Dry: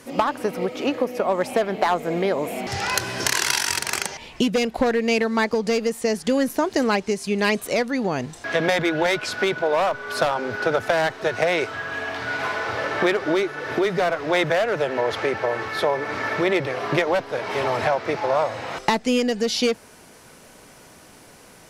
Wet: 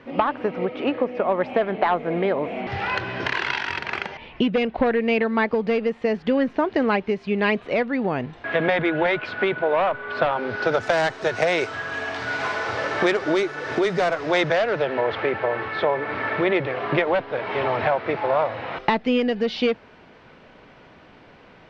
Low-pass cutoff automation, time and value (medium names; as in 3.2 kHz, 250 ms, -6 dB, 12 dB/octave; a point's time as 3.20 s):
low-pass 24 dB/octave
10.28 s 3.1 kHz
10.92 s 8.2 kHz
14.16 s 8.2 kHz
15.07 s 3.4 kHz